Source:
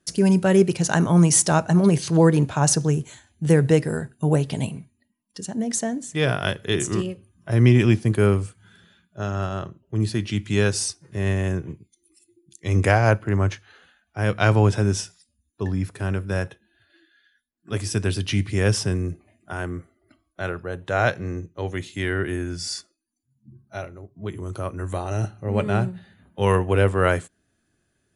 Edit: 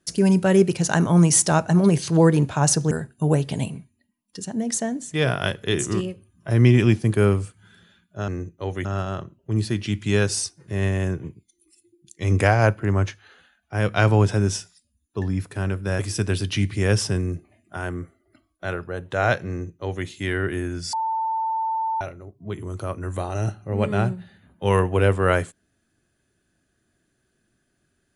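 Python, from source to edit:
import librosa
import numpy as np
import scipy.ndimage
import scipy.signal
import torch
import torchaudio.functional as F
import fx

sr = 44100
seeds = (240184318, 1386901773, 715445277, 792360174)

y = fx.edit(x, sr, fx.cut(start_s=2.91, length_s=1.01),
    fx.cut(start_s=16.43, length_s=1.32),
    fx.duplicate(start_s=21.25, length_s=0.57, to_s=9.29),
    fx.bleep(start_s=22.69, length_s=1.08, hz=892.0, db=-21.5), tone=tone)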